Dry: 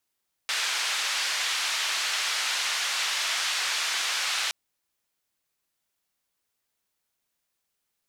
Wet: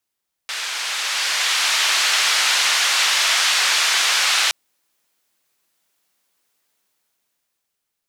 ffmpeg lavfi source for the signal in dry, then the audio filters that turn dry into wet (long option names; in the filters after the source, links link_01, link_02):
-f lavfi -i "anoisesrc=color=white:duration=4.02:sample_rate=44100:seed=1,highpass=frequency=1200,lowpass=frequency=4800,volume=-15.6dB"
-filter_complex "[0:a]acrossover=split=160[link_01][link_02];[link_02]dynaudnorm=framelen=230:gausssize=11:maxgain=10.5dB[link_03];[link_01][link_03]amix=inputs=2:normalize=0"